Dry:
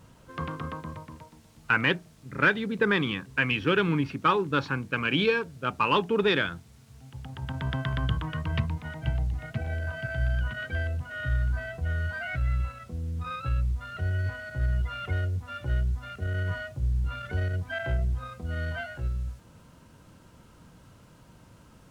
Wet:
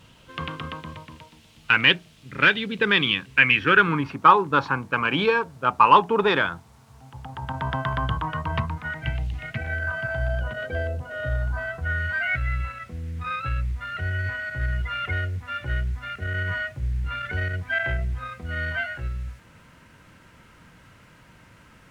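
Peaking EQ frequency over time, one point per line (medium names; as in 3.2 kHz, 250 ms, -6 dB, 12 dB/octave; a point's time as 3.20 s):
peaking EQ +13 dB 1.2 oct
3.20 s 3 kHz
4.14 s 940 Hz
8.56 s 940 Hz
9.30 s 3 kHz
10.55 s 530 Hz
11.21 s 530 Hz
12.03 s 2 kHz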